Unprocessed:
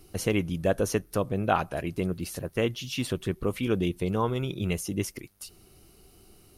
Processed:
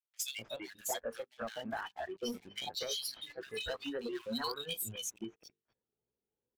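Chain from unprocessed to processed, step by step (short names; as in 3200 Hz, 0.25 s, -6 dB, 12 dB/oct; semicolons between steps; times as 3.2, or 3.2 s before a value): repeated pitch sweeps +5 st, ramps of 0.349 s; notches 50/100/150/200/250/300/350/400/450 Hz; spectral noise reduction 22 dB; weighting filter D; low-pass opened by the level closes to 900 Hz, open at -28 dBFS; bell 12000 Hz +10 dB 0.87 oct; compressor 8:1, threshold -43 dBFS, peak gain reduction 22.5 dB; sample leveller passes 3; bands offset in time highs, lows 0.25 s, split 2000 Hz; gain -2 dB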